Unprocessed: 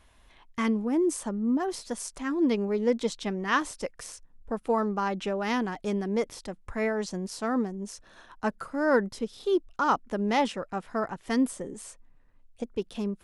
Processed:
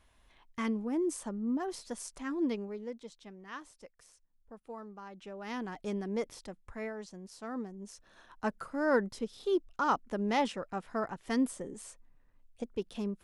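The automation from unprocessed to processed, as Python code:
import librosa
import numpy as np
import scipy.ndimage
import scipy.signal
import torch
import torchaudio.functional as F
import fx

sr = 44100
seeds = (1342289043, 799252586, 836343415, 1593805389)

y = fx.gain(x, sr, db=fx.line((2.43, -6.5), (3.01, -19.0), (5.1, -19.0), (5.78, -6.5), (6.41, -6.5), (7.15, -14.5), (8.46, -4.5)))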